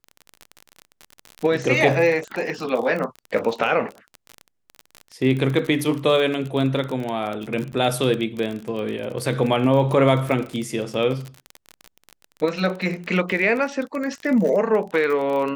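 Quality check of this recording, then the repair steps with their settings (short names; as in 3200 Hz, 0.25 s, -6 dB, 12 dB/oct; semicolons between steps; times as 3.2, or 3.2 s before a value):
crackle 34/s -26 dBFS
7.72–7.73 gap 8.9 ms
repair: de-click; interpolate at 7.72, 8.9 ms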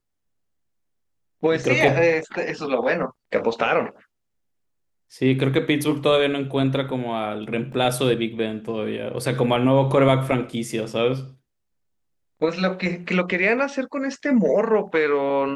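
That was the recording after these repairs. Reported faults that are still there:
none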